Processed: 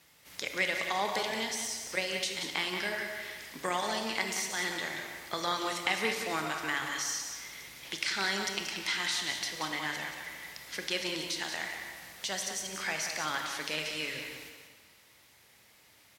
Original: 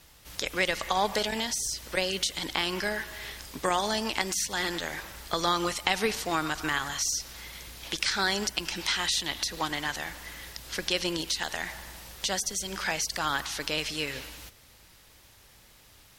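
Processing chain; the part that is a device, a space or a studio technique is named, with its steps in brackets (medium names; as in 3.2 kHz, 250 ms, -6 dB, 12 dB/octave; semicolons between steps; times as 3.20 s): PA in a hall (high-pass 130 Hz 12 dB/octave; peaking EQ 2.1 kHz +6 dB 0.4 oct; delay 182 ms -8 dB; reverberation RT60 1.7 s, pre-delay 23 ms, DRR 5 dB); trim -6.5 dB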